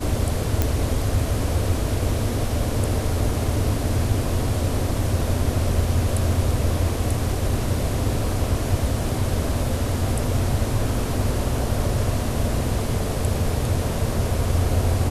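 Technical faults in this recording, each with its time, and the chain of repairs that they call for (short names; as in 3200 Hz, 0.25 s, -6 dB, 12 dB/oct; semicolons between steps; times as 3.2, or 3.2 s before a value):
0.62 pop -5 dBFS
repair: de-click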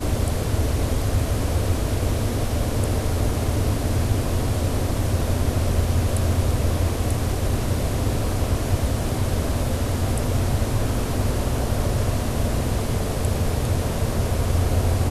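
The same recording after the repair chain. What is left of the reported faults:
none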